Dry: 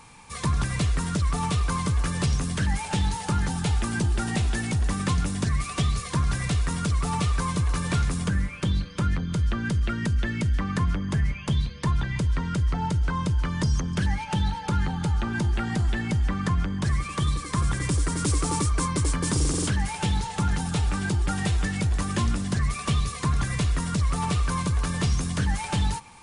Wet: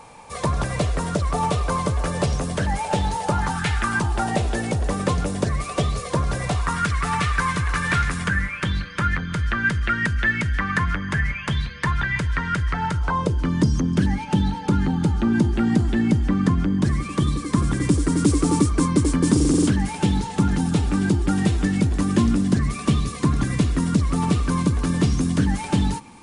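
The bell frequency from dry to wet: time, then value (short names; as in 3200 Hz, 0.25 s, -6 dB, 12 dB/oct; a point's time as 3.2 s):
bell +14.5 dB 1.3 oct
3.29 s 590 Hz
3.68 s 1900 Hz
4.42 s 540 Hz
6.4 s 540 Hz
6.85 s 1700 Hz
12.88 s 1700 Hz
13.45 s 270 Hz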